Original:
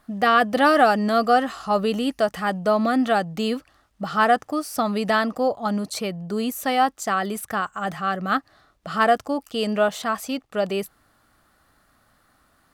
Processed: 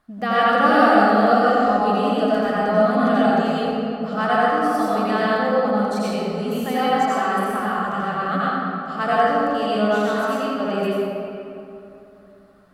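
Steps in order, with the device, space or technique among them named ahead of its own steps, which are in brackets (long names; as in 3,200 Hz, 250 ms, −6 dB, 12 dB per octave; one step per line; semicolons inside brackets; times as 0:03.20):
swimming-pool hall (convolution reverb RT60 2.9 s, pre-delay 76 ms, DRR −8.5 dB; high-shelf EQ 5,200 Hz −7.5 dB)
level −6 dB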